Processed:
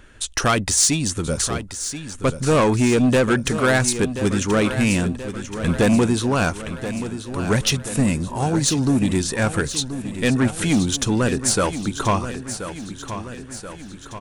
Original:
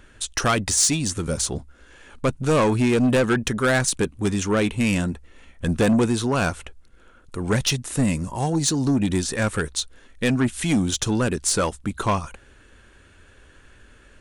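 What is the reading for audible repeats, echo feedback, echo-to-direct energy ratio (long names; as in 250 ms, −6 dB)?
5, 56%, −9.5 dB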